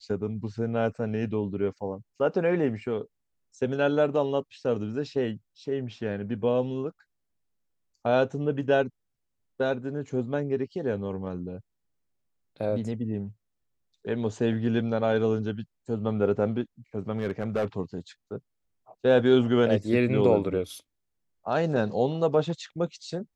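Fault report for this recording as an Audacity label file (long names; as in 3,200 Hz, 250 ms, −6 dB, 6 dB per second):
17.170000	17.650000	clipping −21.5 dBFS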